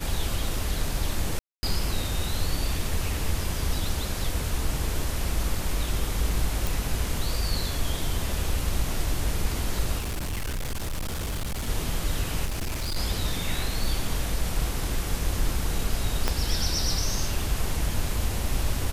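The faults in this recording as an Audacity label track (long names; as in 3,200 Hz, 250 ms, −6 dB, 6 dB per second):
1.390000	1.630000	drop-out 240 ms
6.670000	6.670000	click
9.980000	11.680000	clipping −26.5 dBFS
12.450000	12.970000	clipping −25.5 dBFS
13.840000	13.840000	drop-out 3 ms
16.280000	16.280000	click −8 dBFS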